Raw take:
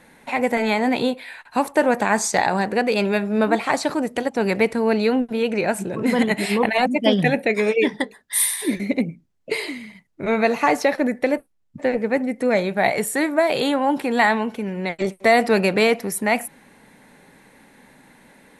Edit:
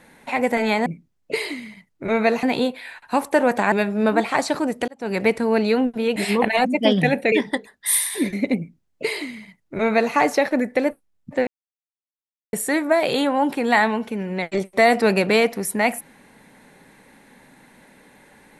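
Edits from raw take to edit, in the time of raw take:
2.15–3.07 s: delete
4.23–4.60 s: fade in
5.51–6.37 s: delete
7.53–7.79 s: delete
9.04–10.61 s: copy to 0.86 s
11.94–13.00 s: mute

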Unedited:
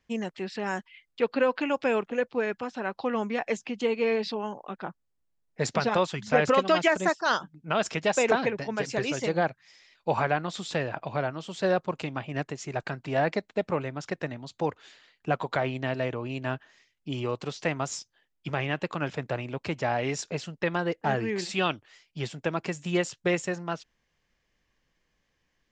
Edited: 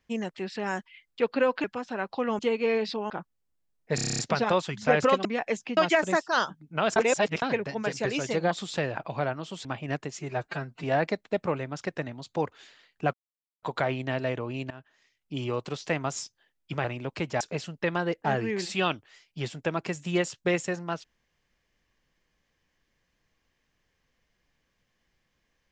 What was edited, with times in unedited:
1.64–2.50 s: delete
3.25–3.77 s: move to 6.70 s
4.48–4.79 s: delete
5.64 s: stutter 0.03 s, 9 plays
7.89–8.35 s: reverse
9.44–10.48 s: delete
11.62–12.11 s: delete
12.65–13.08 s: stretch 1.5×
15.38 s: insert silence 0.49 s
16.46–17.15 s: fade in, from -20 dB
18.60–19.33 s: delete
19.89–20.20 s: delete

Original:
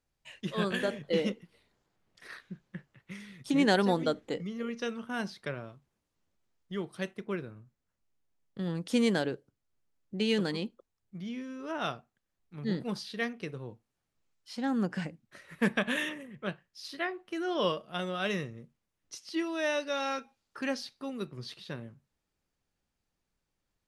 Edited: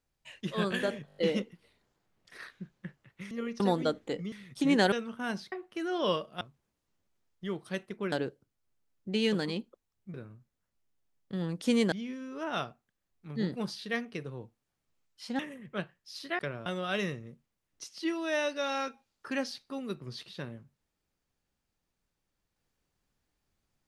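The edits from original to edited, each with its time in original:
1.07 s: stutter 0.02 s, 6 plays
3.21–3.81 s: swap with 4.53–4.82 s
5.42–5.69 s: swap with 17.08–17.97 s
7.40–9.18 s: move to 11.20 s
14.67–16.08 s: delete

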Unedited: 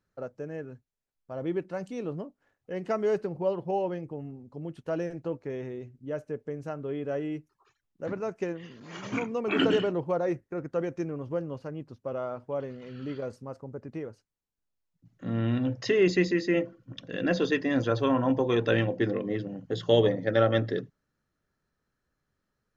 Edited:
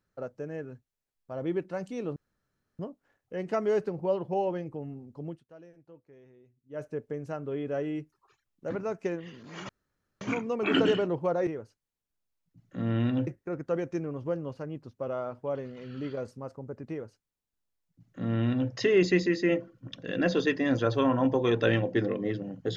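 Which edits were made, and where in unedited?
2.16 s: insert room tone 0.63 s
4.65–6.20 s: dip -20 dB, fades 0.14 s
9.06 s: insert room tone 0.52 s
13.95–15.75 s: copy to 10.32 s

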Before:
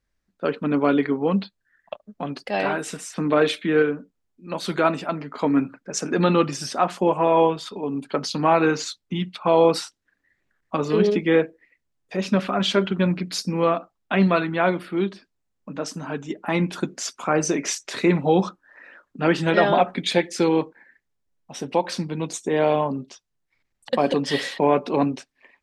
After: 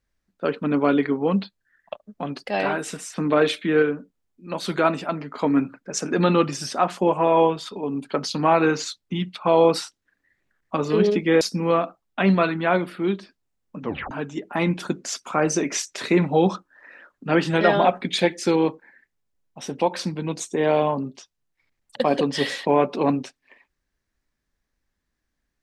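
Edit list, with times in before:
11.41–13.34 s: delete
15.74 s: tape stop 0.30 s

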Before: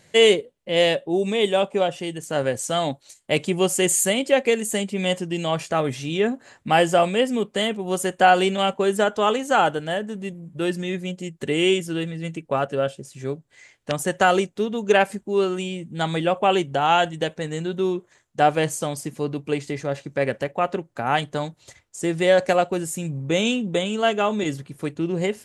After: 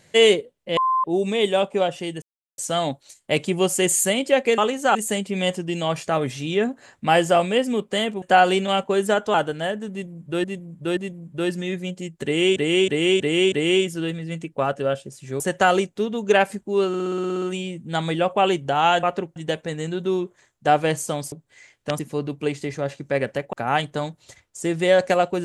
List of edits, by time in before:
0.77–1.04 s: bleep 1.04 kHz -17 dBFS
2.22–2.58 s: mute
7.85–8.12 s: delete
9.24–9.61 s: move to 4.58 s
10.18–10.71 s: loop, 3 plays
11.45–11.77 s: loop, 5 plays
13.33–14.00 s: move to 19.05 s
15.48 s: stutter 0.06 s, 10 plays
20.59–20.92 s: move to 17.09 s

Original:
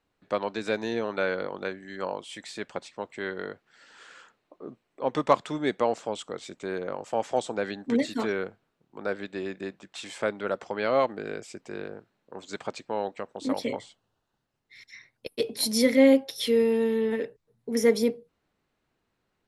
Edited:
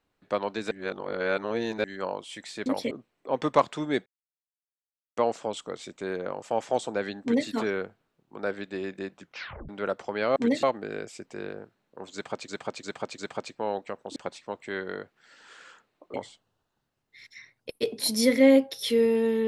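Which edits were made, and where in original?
0.71–1.84 s: reverse
2.66–4.64 s: swap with 13.46–13.71 s
5.79 s: insert silence 1.11 s
7.84–8.11 s: copy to 10.98 s
9.83 s: tape stop 0.48 s
12.48–12.83 s: loop, 4 plays

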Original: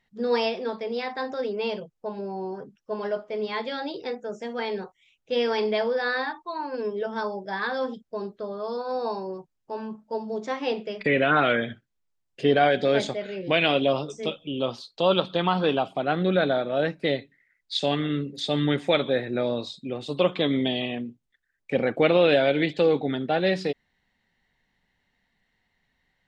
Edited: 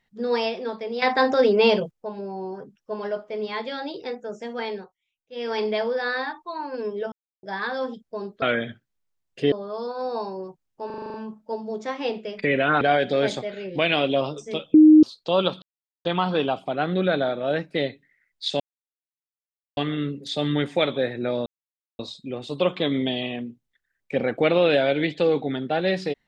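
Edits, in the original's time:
1.02–1.91 s: gain +11 dB
4.68–5.58 s: dip -17.5 dB, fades 0.27 s
7.12–7.43 s: mute
9.76 s: stutter 0.04 s, 8 plays
11.43–12.53 s: move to 8.42 s
14.46–14.75 s: bleep 309 Hz -7.5 dBFS
15.34 s: insert silence 0.43 s
17.89 s: insert silence 1.17 s
19.58 s: insert silence 0.53 s

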